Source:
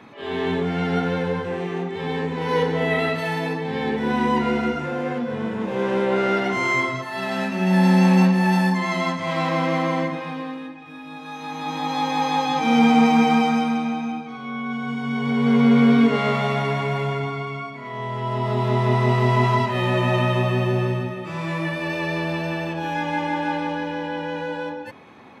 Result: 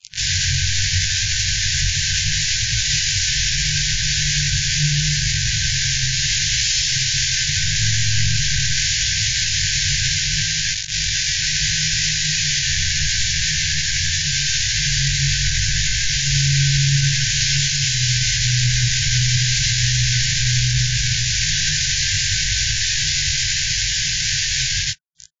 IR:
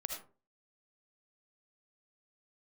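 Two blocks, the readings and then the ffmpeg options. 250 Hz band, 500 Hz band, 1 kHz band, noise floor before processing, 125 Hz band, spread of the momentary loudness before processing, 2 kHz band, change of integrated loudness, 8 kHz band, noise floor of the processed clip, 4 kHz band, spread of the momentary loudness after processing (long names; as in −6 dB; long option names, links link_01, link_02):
below −10 dB, below −35 dB, below −30 dB, −36 dBFS, +4.0 dB, 14 LU, +5.5 dB, +4.5 dB, can't be measured, −21 dBFS, +17.5 dB, 2 LU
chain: -filter_complex "[0:a]areverse,acompressor=threshold=-26dB:ratio=5,areverse,aecho=1:1:1:0.31,asoftclip=type=tanh:threshold=-23dB,acrossover=split=120|270|3700[link_01][link_02][link_03][link_04];[link_01]acompressor=threshold=-46dB:ratio=4[link_05];[link_02]acompressor=threshold=-32dB:ratio=4[link_06];[link_03]acompressor=threshold=-34dB:ratio=4[link_07];[link_04]acompressor=threshold=-58dB:ratio=4[link_08];[link_05][link_06][link_07][link_08]amix=inputs=4:normalize=0,acrusher=bits=5:mix=0:aa=0.000001,aemphasis=mode=production:type=75fm,aeval=exprs='(mod(18.8*val(0)+1,2)-1)/18.8':channel_layout=same,flanger=delay=18:depth=4.3:speed=0.75,bass=frequency=250:gain=8,treble=frequency=4000:gain=4,afftfilt=real='re*(1-between(b*sr/4096,160,1500))':imag='im*(1-between(b*sr/4096,160,1500))':win_size=4096:overlap=0.75,alimiter=level_in=23dB:limit=-1dB:release=50:level=0:latency=1,volume=-3.5dB" -ar 16000 -c:a wmav2 -b:a 32k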